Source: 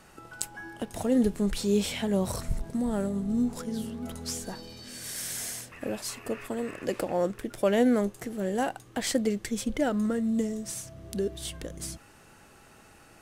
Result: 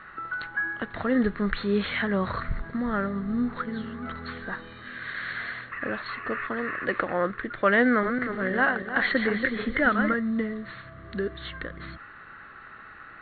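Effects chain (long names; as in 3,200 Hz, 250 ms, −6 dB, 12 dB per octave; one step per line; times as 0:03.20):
0:07.87–0:10.14: feedback delay that plays each chunk backwards 159 ms, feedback 56%, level −5.5 dB
linear-phase brick-wall low-pass 4,400 Hz
flat-topped bell 1,500 Hz +15.5 dB 1.1 octaves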